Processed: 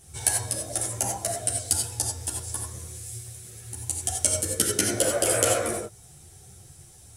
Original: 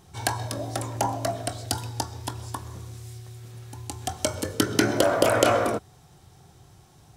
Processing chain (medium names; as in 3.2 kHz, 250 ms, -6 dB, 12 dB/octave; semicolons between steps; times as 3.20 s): peaking EQ 10 kHz +9.5 dB 0.42 oct; in parallel at -2 dB: compression, threshold -34 dBFS, peak gain reduction 19.5 dB; on the sum: ten-band graphic EQ 250 Hz -8 dB, 1 kHz -12 dB, 4 kHz -4 dB, 8 kHz +7 dB; gated-style reverb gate 110 ms rising, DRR 1.5 dB; three-phase chorus